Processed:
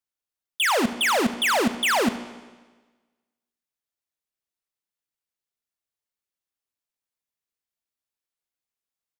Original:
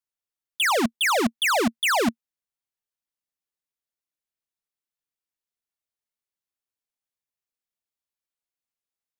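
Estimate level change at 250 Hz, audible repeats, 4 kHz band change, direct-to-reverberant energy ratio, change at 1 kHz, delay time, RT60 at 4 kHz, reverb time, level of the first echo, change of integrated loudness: +0.5 dB, 1, +0.5 dB, 10.5 dB, +0.5 dB, 74 ms, 1.3 s, 1.3 s, -18.0 dB, +0.5 dB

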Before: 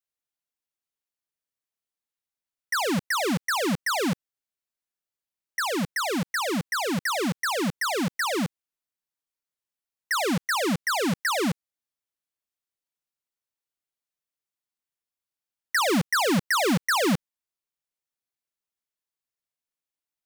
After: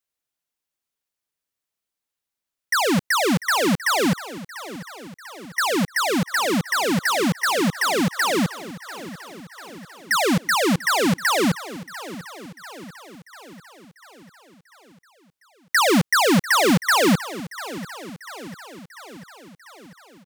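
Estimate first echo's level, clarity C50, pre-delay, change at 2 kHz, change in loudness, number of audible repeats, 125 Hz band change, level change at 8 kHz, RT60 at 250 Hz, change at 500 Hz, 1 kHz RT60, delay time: -16.0 dB, none, none, +5.5 dB, +5.5 dB, 5, +5.5 dB, +5.5 dB, none, +5.5 dB, none, 0.694 s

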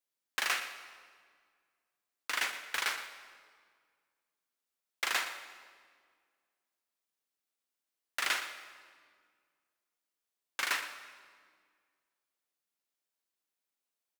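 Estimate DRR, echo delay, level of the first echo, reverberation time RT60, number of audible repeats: 8.0 dB, 0.117 s, -14.0 dB, 1.9 s, 1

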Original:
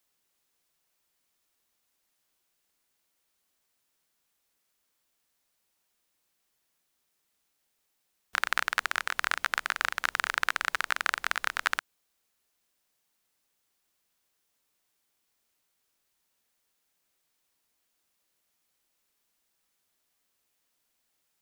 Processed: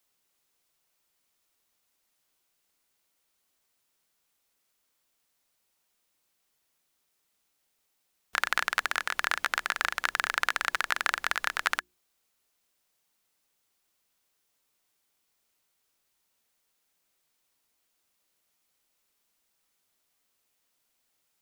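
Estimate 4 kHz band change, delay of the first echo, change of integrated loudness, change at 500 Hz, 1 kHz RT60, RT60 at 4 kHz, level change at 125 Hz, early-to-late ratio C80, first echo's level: +1.0 dB, none, +0.5 dB, +1.0 dB, none, none, n/a, none, none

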